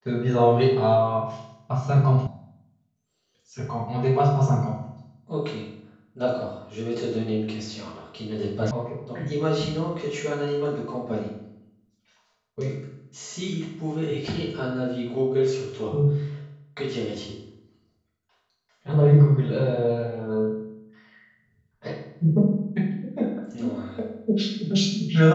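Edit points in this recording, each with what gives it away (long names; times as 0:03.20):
0:02.27: cut off before it has died away
0:08.71: cut off before it has died away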